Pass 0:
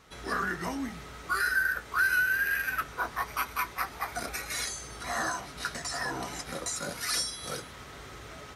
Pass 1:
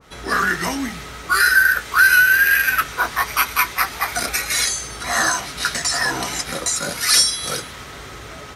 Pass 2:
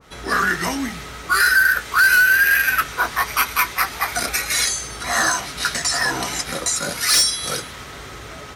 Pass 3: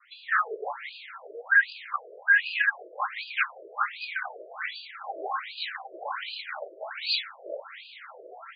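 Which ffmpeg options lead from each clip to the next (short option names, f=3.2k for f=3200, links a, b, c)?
-af "adynamicequalizer=threshold=0.00891:dfrequency=1500:dqfactor=0.7:tfrequency=1500:tqfactor=0.7:attack=5:release=100:ratio=0.375:range=4:mode=boostabove:tftype=highshelf,volume=9dB"
-af "asoftclip=type=hard:threshold=-10dB"
-af "afreqshift=77,highpass=120,lowpass=5.1k,afftfilt=real='re*between(b*sr/1024,470*pow(3500/470,0.5+0.5*sin(2*PI*1.3*pts/sr))/1.41,470*pow(3500/470,0.5+0.5*sin(2*PI*1.3*pts/sr))*1.41)':imag='im*between(b*sr/1024,470*pow(3500/470,0.5+0.5*sin(2*PI*1.3*pts/sr))/1.41,470*pow(3500/470,0.5+0.5*sin(2*PI*1.3*pts/sr))*1.41)':win_size=1024:overlap=0.75,volume=-3dB"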